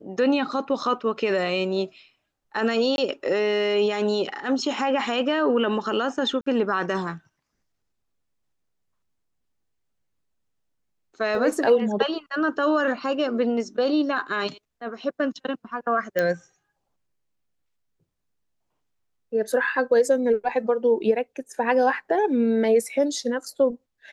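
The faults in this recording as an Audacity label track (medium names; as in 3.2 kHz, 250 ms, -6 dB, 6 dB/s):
2.960000	2.980000	dropout 21 ms
6.410000	6.460000	dropout 54 ms
11.350000	11.350000	dropout 2.5 ms
16.190000	16.190000	pop -11 dBFS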